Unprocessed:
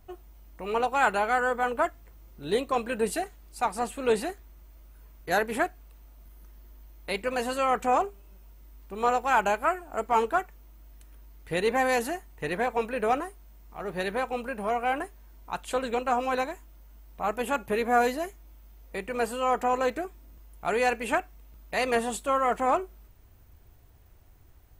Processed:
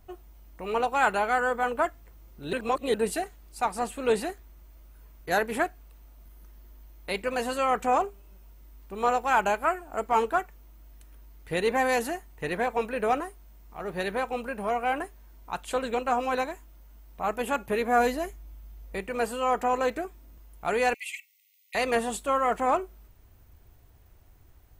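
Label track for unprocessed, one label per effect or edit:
2.530000	2.940000	reverse
17.980000	19.010000	peaking EQ 62 Hz +6.5 dB 2.8 oct
20.940000	21.750000	brick-wall FIR high-pass 1.9 kHz

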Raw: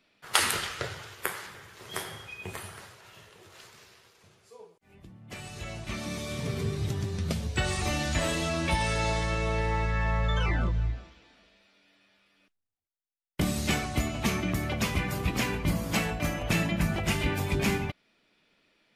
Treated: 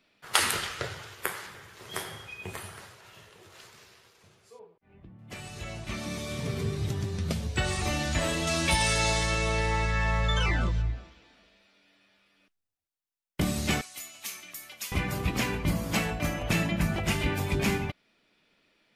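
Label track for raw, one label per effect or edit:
4.590000	5.190000	distance through air 400 m
8.470000	10.820000	treble shelf 3 kHz +11 dB
13.810000	14.920000	differentiator

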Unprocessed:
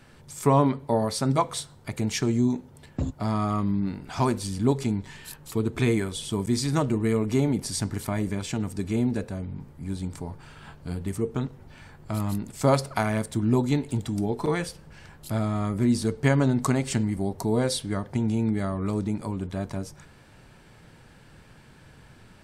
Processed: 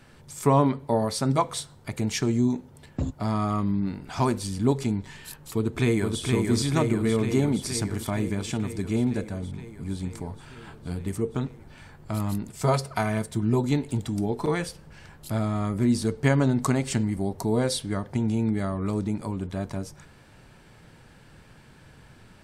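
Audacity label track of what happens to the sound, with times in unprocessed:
5.540000	6.220000	echo throw 470 ms, feedback 75%, level -3.5 dB
12.490000	13.640000	comb of notches 280 Hz

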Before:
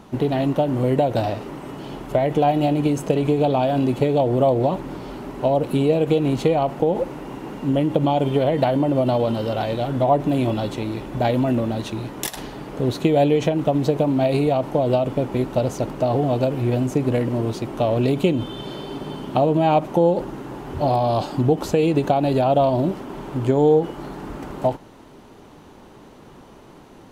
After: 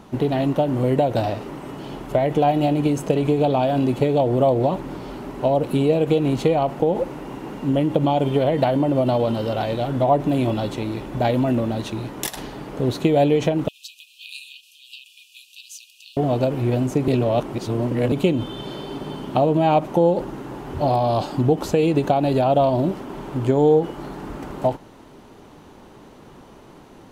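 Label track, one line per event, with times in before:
13.680000	16.170000	brick-wall FIR high-pass 2.4 kHz
17.080000	18.120000	reverse

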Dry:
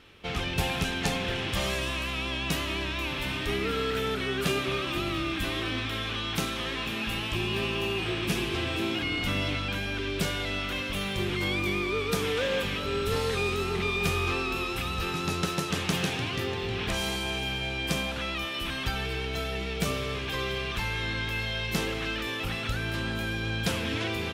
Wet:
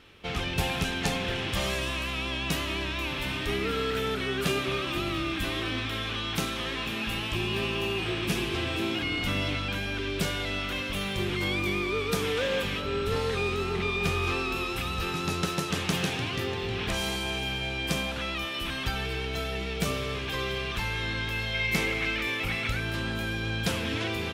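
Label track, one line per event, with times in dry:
12.800000	14.220000	treble shelf 5.4 kHz -> 8.2 kHz -8 dB
21.530000	22.800000	peaking EQ 2.2 kHz +13.5 dB 0.21 oct

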